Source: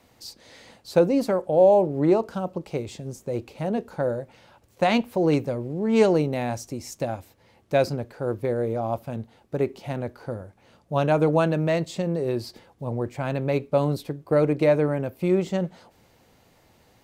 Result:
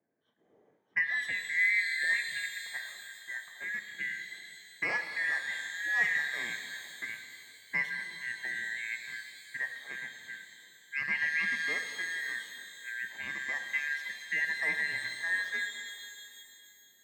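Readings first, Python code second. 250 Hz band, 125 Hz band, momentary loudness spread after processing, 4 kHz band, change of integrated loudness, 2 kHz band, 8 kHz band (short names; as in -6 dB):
-31.5 dB, -33.0 dB, 15 LU, -0.5 dB, -8.0 dB, +9.5 dB, -2.0 dB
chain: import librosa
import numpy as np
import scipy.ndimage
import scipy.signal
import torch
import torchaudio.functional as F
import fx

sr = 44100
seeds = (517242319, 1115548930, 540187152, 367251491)

y = fx.band_shuffle(x, sr, order='2143')
y = fx.env_lowpass(y, sr, base_hz=460.0, full_db=-20.0)
y = scipy.signal.sosfilt(scipy.signal.butter(4, 120.0, 'highpass', fs=sr, output='sos'), y)
y = fx.high_shelf(y, sr, hz=2900.0, db=-9.5)
y = fx.rev_shimmer(y, sr, seeds[0], rt60_s=2.7, semitones=12, shimmer_db=-8, drr_db=6.0)
y = F.gain(torch.from_numpy(y), -9.0).numpy()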